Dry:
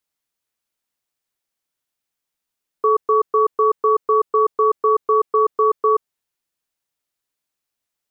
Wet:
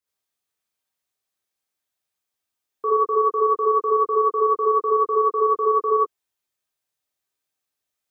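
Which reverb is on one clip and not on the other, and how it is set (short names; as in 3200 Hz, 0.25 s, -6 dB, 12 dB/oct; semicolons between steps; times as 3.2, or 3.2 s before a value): non-linear reverb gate 0.1 s rising, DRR -7 dB; gain -8.5 dB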